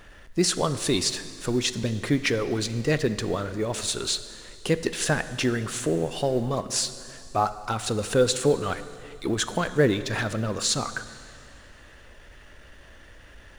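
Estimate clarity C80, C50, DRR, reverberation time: 14.0 dB, 13.0 dB, 12.0 dB, 2.3 s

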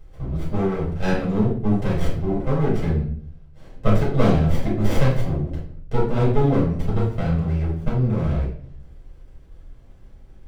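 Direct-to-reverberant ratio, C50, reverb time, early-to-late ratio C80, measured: -7.5 dB, 3.5 dB, 0.55 s, 8.5 dB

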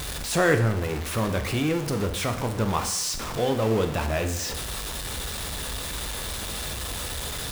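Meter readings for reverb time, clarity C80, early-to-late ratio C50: 0.75 s, 12.5 dB, 10.0 dB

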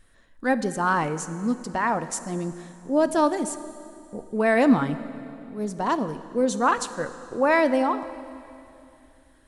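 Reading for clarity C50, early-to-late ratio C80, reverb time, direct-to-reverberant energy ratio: 13.0 dB, 14.0 dB, 2.8 s, 12.0 dB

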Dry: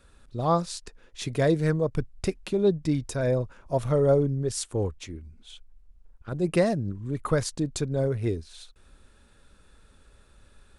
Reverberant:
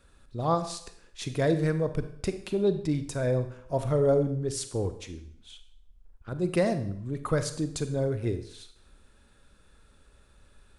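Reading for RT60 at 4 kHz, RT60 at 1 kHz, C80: 0.60 s, 0.65 s, 14.5 dB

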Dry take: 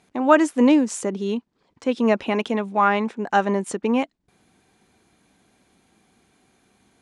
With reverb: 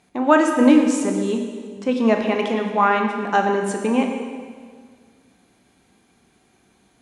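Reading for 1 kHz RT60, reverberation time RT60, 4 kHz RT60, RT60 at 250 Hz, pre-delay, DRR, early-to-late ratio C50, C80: 1.7 s, 1.7 s, 1.6 s, 2.0 s, 12 ms, 2.5 dB, 4.5 dB, 6.0 dB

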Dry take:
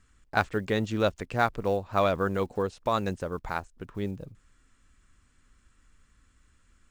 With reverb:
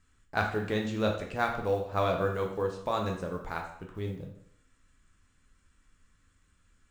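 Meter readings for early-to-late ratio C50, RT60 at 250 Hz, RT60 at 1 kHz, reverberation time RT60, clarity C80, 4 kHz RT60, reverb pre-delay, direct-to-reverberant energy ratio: 6.5 dB, 0.65 s, 0.65 s, 0.65 s, 9.5 dB, 0.60 s, 5 ms, 1.5 dB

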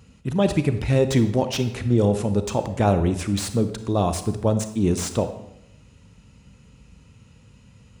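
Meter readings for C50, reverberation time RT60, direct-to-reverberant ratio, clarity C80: 10.5 dB, 0.80 s, 9.5 dB, 13.0 dB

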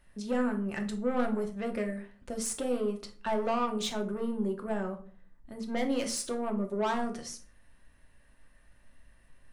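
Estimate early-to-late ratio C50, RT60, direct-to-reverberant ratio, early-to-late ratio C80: 12.0 dB, 0.45 s, 3.0 dB, 17.5 dB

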